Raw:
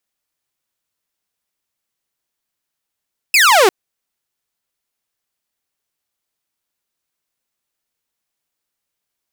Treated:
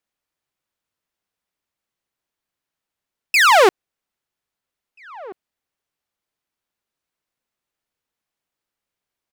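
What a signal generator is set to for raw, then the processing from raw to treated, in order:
single falling chirp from 2,700 Hz, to 350 Hz, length 0.35 s saw, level −5 dB
high-shelf EQ 4,100 Hz −9.5 dB
slap from a distant wall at 280 metres, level −21 dB

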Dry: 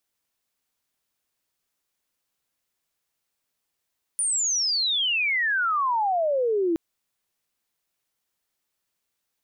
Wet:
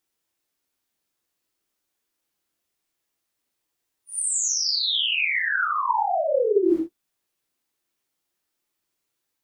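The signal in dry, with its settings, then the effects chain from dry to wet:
glide logarithmic 9,600 Hz → 320 Hz −21.5 dBFS → −20 dBFS 2.57 s
random phases in long frames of 200 ms
parametric band 330 Hz +7.5 dB 0.48 octaves

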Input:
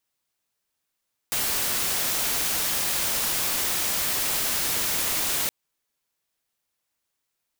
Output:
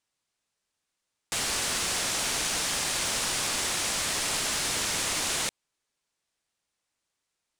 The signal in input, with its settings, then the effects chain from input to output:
noise white, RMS −25.5 dBFS 4.17 s
low-pass filter 9,600 Hz 24 dB per octave
floating-point word with a short mantissa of 2 bits

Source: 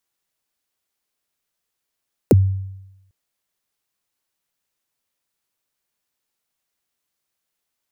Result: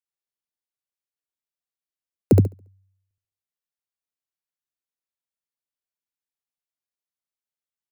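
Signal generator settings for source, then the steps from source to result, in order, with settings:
synth kick length 0.80 s, from 570 Hz, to 96 Hz, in 28 ms, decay 0.93 s, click on, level −6 dB
on a send: repeating echo 70 ms, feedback 41%, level −3.5 dB
on the sum: expander for the loud parts 2.5 to 1, over −23 dBFS

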